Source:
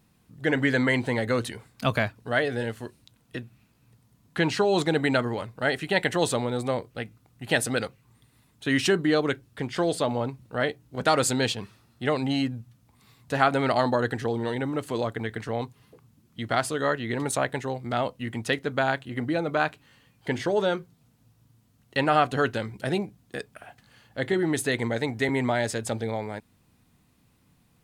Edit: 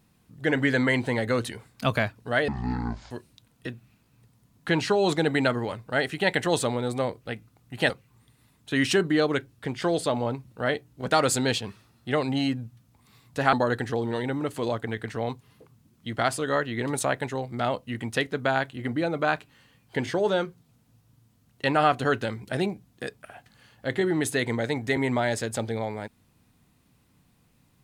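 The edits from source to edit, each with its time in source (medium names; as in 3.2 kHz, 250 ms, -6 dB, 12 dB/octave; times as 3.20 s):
2.48–2.80 s: speed 51%
7.59–7.84 s: delete
13.47–13.85 s: delete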